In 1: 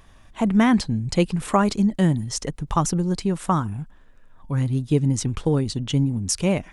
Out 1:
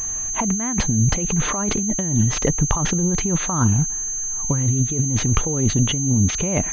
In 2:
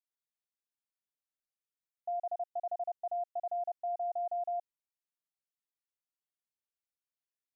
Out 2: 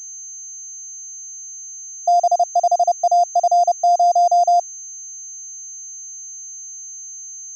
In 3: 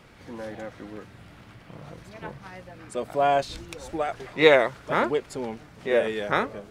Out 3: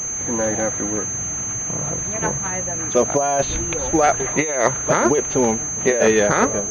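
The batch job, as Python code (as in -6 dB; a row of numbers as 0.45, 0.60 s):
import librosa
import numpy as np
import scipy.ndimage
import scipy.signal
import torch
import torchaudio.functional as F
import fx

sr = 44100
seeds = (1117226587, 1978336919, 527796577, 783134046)

y = fx.over_compress(x, sr, threshold_db=-27.0, ratio=-1.0)
y = fx.pwm(y, sr, carrier_hz=6300.0)
y = y * 10.0 ** (-20 / 20.0) / np.sqrt(np.mean(np.square(y)))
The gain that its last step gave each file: +7.0, +21.0, +10.0 dB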